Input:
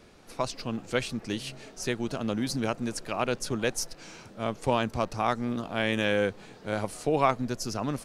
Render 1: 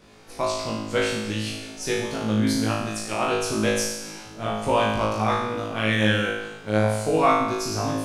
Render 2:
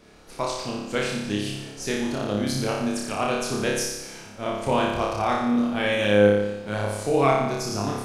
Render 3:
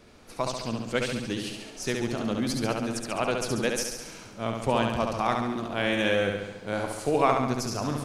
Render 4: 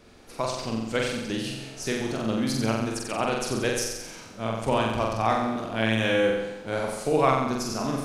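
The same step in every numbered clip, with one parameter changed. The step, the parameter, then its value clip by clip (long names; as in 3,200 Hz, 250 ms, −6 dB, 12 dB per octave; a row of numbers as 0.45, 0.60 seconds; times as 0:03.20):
flutter between parallel walls, walls apart: 3.2, 5, 11.9, 7.7 metres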